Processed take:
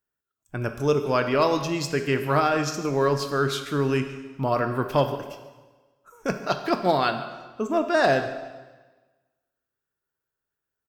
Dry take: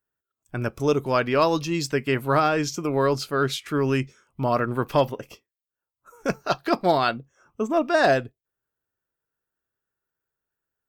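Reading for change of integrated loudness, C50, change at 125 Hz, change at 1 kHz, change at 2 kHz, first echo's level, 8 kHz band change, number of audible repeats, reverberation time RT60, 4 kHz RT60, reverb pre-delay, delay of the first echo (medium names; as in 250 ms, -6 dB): -1.0 dB, 9.0 dB, 0.0 dB, -1.0 dB, -0.5 dB, -19.0 dB, -1.0 dB, 1, 1.3 s, 1.2 s, 7 ms, 143 ms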